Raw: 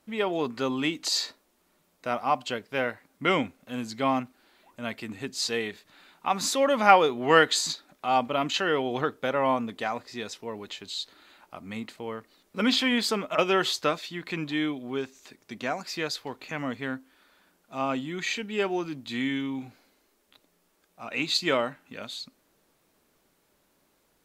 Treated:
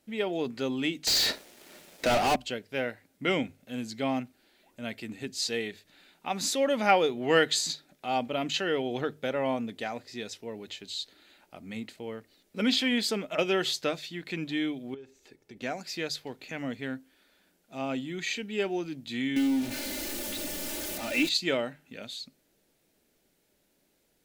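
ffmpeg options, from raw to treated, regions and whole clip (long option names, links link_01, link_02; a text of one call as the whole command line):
ffmpeg -i in.wav -filter_complex "[0:a]asettb=1/sr,asplit=3[link_01][link_02][link_03];[link_01]atrim=end=1.074[link_04];[link_02]atrim=start=1.07:end=2.36,asetpts=PTS-STARTPTS,afade=type=in:duration=0.004:curve=qsin,afade=type=out:start_time=1.286:duration=0.004:curve=qsin,asplit=2[link_05][link_06];[link_06]highpass=frequency=720:poles=1,volume=36dB,asoftclip=type=tanh:threshold=-11.5dB[link_07];[link_05][link_07]amix=inputs=2:normalize=0,lowpass=frequency=1200:poles=1,volume=-6dB,highshelf=frequency=3000:gain=9.5,aeval=exprs='sgn(val(0))*max(abs(val(0))-0.00376,0)':channel_layout=same[link_08];[link_03]atrim=start=2.356[link_09];[link_04][link_08]acrossfade=duration=0.004:curve1=hsin:curve2=qsin[link_10];[link_10][link_09]acrossfade=duration=0.004:curve1=qsin:curve2=hsin,asettb=1/sr,asplit=3[link_11][link_12][link_13];[link_11]atrim=end=14.944[link_14];[link_12]atrim=start=14.94:end=15.62,asetpts=PTS-STARTPTS,afade=type=in:duration=0.004:curve=qsin,afade=type=out:start_time=0.676:duration=0.004:curve=qsin,highshelf=frequency=2000:gain=-9.5,aecho=1:1:2.3:0.42,atrim=end_sample=29988,acompressor=threshold=-39dB:ratio=12:attack=3.2:release=140:knee=1:detection=peak[link_15];[link_13]atrim=start=15.616[link_16];[link_14][link_15]acrossfade=duration=0.004:curve1=hsin:curve2=qsin[link_17];[link_17][link_16]acrossfade=duration=0.004:curve1=qsin:curve2=hsin,asettb=1/sr,asplit=3[link_18][link_19][link_20];[link_18]atrim=end=19.364[link_21];[link_19]atrim=start=19.36:end=21.29,asetpts=PTS-STARTPTS,afade=type=in:duration=0.004:curve=qsin,afade=type=out:start_time=1.926:duration=0.004:curve=qsin,aeval=exprs='val(0)+0.5*0.0316*sgn(val(0))':channel_layout=same,aecho=1:1:3.4:0.81,atrim=end_sample=85113,acrusher=bits=7:mix=0:aa=0.5[link_22];[link_20]atrim=start=21.286[link_23];[link_21][link_22]acrossfade=duration=0.004:curve1=hsin:curve2=qsin[link_24];[link_24][link_23]acrossfade=duration=0.004:curve1=qsin:curve2=hsin,equalizer=frequency=1100:width_type=o:width=0.7:gain=-11.5,bandreject=frequency=50:width_type=h:width=6,bandreject=frequency=100:width_type=h:width=6,bandreject=frequency=150:width_type=h:width=6,volume=-1.5dB" out.wav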